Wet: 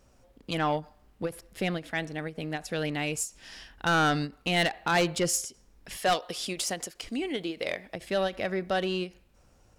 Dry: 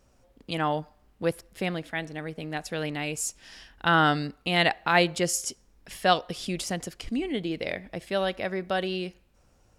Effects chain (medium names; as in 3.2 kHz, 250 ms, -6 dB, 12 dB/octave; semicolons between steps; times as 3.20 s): 5.97–7.95 s: tone controls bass -11 dB, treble +3 dB; saturation -20 dBFS, distortion -10 dB; endings held to a fixed fall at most 260 dB/s; trim +1.5 dB